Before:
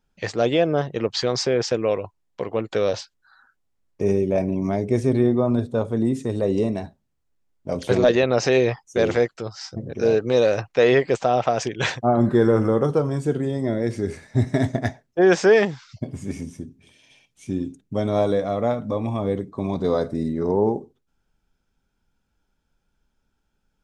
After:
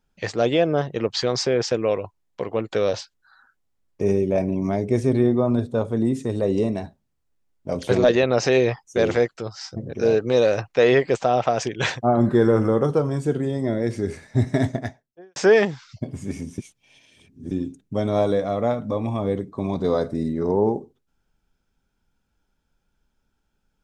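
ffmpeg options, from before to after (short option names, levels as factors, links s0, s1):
-filter_complex "[0:a]asplit=4[s0][s1][s2][s3];[s0]atrim=end=15.36,asetpts=PTS-STARTPTS,afade=t=out:st=14.67:d=0.69:c=qua[s4];[s1]atrim=start=15.36:end=16.582,asetpts=PTS-STARTPTS,afade=t=in:d=0.004:c=hsin[s5];[s2]atrim=start=16.578:end=17.512,asetpts=PTS-STARTPTS,areverse[s6];[s3]atrim=start=17.508[s7];[s4][s5]concat=n=2:v=0:a=1[s8];[s8][s6]acrossfade=d=0.004:c1=hsin:c2=hsin[s9];[s9][s7]acrossfade=d=0.004:c1=hsin:c2=hsin"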